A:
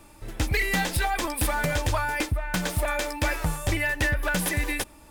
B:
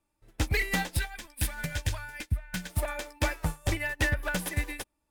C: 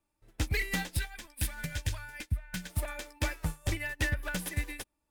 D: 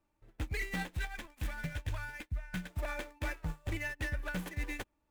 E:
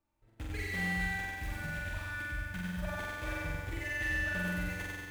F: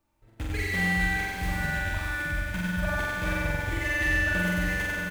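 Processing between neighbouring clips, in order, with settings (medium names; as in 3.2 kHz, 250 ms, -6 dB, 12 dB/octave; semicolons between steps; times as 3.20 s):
time-frequency box 0.99–2.70 s, 240–1400 Hz -8 dB; upward expansion 2.5:1, over -40 dBFS
dynamic bell 770 Hz, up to -5 dB, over -44 dBFS, Q 0.74; trim -2.5 dB
median filter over 9 samples; reverse; compression, threshold -37 dBFS, peak gain reduction 12 dB; reverse; trim +3.5 dB
flutter echo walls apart 7.7 m, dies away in 1.5 s; bit-crushed delay 100 ms, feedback 55%, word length 9-bit, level -4 dB; trim -5.5 dB
delay 613 ms -6.5 dB; trim +8 dB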